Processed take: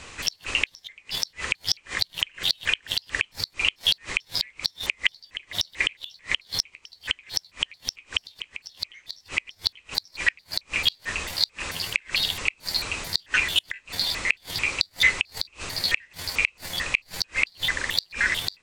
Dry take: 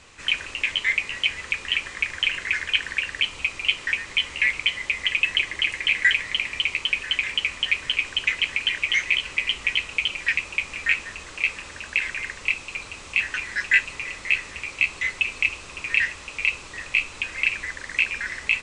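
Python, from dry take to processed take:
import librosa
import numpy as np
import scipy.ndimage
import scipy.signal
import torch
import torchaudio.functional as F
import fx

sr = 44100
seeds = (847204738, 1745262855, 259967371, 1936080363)

y = fx.pitch_trill(x, sr, semitones=10.0, every_ms=221)
y = fx.gate_flip(y, sr, shuts_db=-14.0, range_db=-34)
y = y * librosa.db_to_amplitude(7.5)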